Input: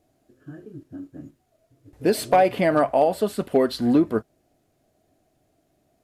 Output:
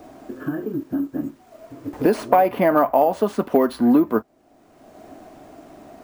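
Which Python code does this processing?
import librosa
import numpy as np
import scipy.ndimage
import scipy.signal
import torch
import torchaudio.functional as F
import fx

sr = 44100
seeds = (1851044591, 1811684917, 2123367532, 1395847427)

y = np.repeat(x[::3], 3)[:len(x)]
y = fx.graphic_eq(y, sr, hz=(125, 250, 1000, 4000, 8000), db=(-6, 6, 10, -4, -3))
y = fx.band_squash(y, sr, depth_pct=70)
y = F.gain(torch.from_numpy(y), -1.0).numpy()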